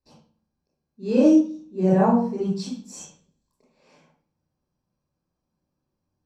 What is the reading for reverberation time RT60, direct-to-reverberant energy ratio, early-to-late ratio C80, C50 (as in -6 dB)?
0.45 s, -7.0 dB, 7.5 dB, 1.0 dB